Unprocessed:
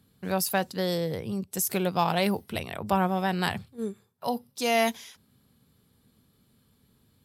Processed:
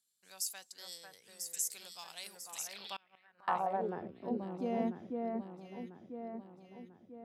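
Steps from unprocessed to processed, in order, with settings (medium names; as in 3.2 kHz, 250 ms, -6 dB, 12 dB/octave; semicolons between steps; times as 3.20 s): echo whose repeats swap between lows and highs 497 ms, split 1.9 kHz, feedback 69%, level -2 dB; band-pass sweep 7.3 kHz -> 300 Hz, 2.54–4.14 s; 2.96–3.48 s: inverted gate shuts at -31 dBFS, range -29 dB; trim -1 dB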